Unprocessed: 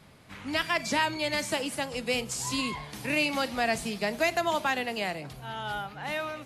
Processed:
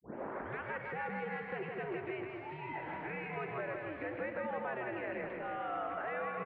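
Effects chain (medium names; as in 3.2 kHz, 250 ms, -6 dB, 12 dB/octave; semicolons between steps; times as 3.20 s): tape start-up on the opening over 0.64 s; compression, threshold -35 dBFS, peak gain reduction 13 dB; peak limiter -35 dBFS, peak gain reduction 10 dB; on a send: bouncing-ball echo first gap 160 ms, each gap 0.9×, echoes 5; on the sum: mistuned SSB -120 Hz 330–2300 Hz; trim +4.5 dB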